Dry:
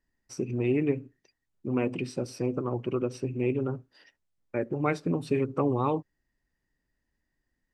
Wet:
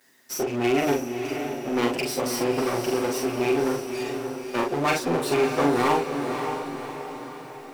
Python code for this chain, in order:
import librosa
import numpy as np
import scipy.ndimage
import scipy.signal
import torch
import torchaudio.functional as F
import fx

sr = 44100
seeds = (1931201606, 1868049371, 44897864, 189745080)

p1 = fx.lower_of_two(x, sr, delay_ms=7.7)
p2 = scipy.signal.sosfilt(scipy.signal.butter(2, 320.0, 'highpass', fs=sr, output='sos'), p1)
p3 = fx.high_shelf(p2, sr, hz=5400.0, db=7.5)
p4 = fx.power_curve(p3, sr, exponent=0.7)
p5 = fx.doubler(p4, sr, ms=42.0, db=-4.0)
p6 = p5 + fx.echo_diffused(p5, sr, ms=572, feedback_pct=51, wet_db=-6.5, dry=0)
y = p6 * librosa.db_to_amplitude(3.0)